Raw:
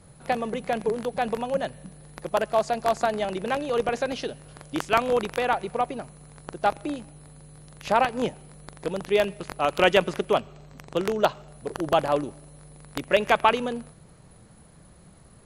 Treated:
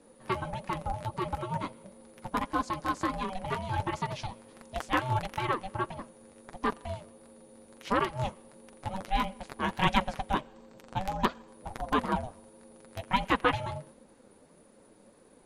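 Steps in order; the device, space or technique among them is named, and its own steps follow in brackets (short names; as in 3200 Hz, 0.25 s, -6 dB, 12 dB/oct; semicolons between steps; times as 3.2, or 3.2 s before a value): alien voice (ring modulator 380 Hz; flange 1.5 Hz, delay 3.5 ms, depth 7.1 ms, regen -25%)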